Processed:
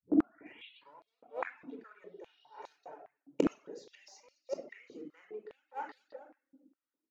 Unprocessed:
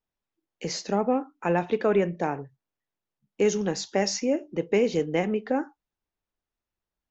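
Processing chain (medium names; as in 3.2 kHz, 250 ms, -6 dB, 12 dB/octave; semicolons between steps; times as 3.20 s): tape start-up on the opening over 1.24 s; gate -47 dBFS, range -21 dB; in parallel at -5 dB: hard clipper -25.5 dBFS, distortion -6 dB; on the sum: compression, threshold -21 dBFS, peak gain reduction 5.5 dB; feedback delay 212 ms, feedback 43%, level -20 dB; inverted gate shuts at -28 dBFS, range -37 dB; spectral replace 1.97–2.60 s, 2.8–5.7 kHz both; reverberation RT60 0.90 s, pre-delay 24 ms, DRR 1.5 dB; reverb removal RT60 0.54 s; step-sequenced high-pass 4.9 Hz 280–4200 Hz; trim +5 dB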